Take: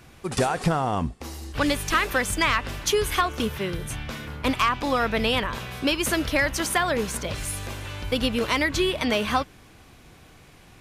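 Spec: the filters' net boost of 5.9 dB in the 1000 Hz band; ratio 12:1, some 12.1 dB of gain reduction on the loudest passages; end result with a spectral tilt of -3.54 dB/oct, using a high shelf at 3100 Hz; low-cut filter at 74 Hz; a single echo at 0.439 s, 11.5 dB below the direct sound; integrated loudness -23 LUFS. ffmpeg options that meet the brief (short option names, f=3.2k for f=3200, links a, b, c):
-af "highpass=74,equalizer=f=1k:t=o:g=6.5,highshelf=f=3.1k:g=7,acompressor=threshold=-24dB:ratio=12,aecho=1:1:439:0.266,volume=5.5dB"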